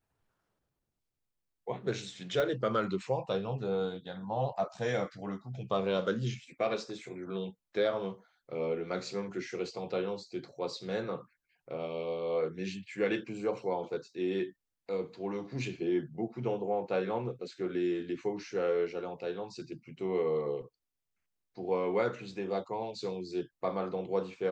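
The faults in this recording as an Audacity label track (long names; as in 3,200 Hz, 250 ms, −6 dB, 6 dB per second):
2.400000	2.400000	click −19 dBFS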